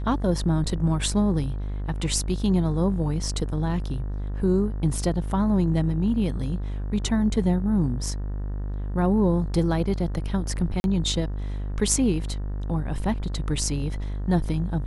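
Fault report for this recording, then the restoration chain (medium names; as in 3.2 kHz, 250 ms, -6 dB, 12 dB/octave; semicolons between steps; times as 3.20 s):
buzz 50 Hz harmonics 38 -29 dBFS
10.80–10.84 s: dropout 41 ms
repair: de-hum 50 Hz, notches 38; interpolate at 10.80 s, 41 ms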